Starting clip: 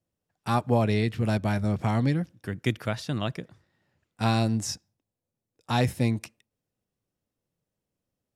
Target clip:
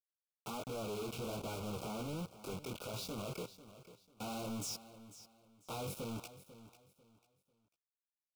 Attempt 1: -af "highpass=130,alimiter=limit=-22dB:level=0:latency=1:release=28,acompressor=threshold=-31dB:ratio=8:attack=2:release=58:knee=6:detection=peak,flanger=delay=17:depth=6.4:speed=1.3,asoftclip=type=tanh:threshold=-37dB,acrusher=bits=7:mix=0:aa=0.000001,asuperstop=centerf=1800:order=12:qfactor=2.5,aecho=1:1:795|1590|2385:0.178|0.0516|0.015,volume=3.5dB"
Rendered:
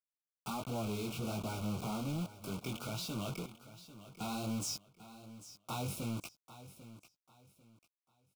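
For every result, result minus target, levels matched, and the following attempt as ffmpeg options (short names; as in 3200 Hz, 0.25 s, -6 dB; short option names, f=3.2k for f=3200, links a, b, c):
echo 0.3 s late; soft clip: distortion -7 dB; 500 Hz band -4.0 dB
-af "highpass=130,alimiter=limit=-22dB:level=0:latency=1:release=28,acompressor=threshold=-31dB:ratio=8:attack=2:release=58:knee=6:detection=peak,flanger=delay=17:depth=6.4:speed=1.3,asoftclip=type=tanh:threshold=-37dB,acrusher=bits=7:mix=0:aa=0.000001,asuperstop=centerf=1800:order=12:qfactor=2.5,aecho=1:1:495|990|1485:0.178|0.0516|0.015,volume=3.5dB"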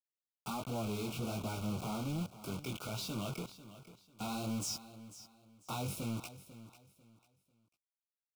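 soft clip: distortion -7 dB; 500 Hz band -4.5 dB
-af "highpass=130,alimiter=limit=-22dB:level=0:latency=1:release=28,acompressor=threshold=-31dB:ratio=8:attack=2:release=58:knee=6:detection=peak,flanger=delay=17:depth=6.4:speed=1.3,asoftclip=type=tanh:threshold=-47.5dB,acrusher=bits=7:mix=0:aa=0.000001,asuperstop=centerf=1800:order=12:qfactor=2.5,aecho=1:1:495|990|1485:0.178|0.0516|0.015,volume=3.5dB"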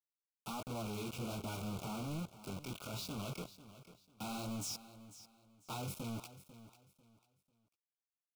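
500 Hz band -4.5 dB
-af "highpass=130,equalizer=f=480:t=o:w=0.7:g=12,alimiter=limit=-22dB:level=0:latency=1:release=28,acompressor=threshold=-31dB:ratio=8:attack=2:release=58:knee=6:detection=peak,flanger=delay=17:depth=6.4:speed=1.3,asoftclip=type=tanh:threshold=-47.5dB,acrusher=bits=7:mix=0:aa=0.000001,asuperstop=centerf=1800:order=12:qfactor=2.5,aecho=1:1:495|990|1485:0.178|0.0516|0.015,volume=3.5dB"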